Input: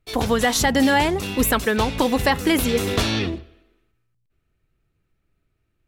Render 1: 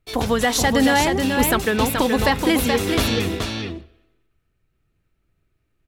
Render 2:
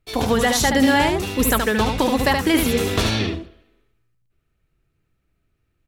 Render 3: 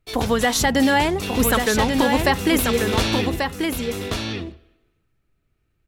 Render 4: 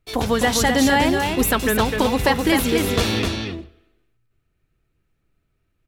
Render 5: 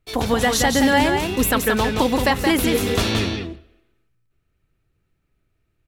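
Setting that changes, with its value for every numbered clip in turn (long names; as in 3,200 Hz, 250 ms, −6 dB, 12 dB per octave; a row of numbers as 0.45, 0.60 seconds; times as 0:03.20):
single-tap delay, delay time: 427, 74, 1,138, 256, 174 milliseconds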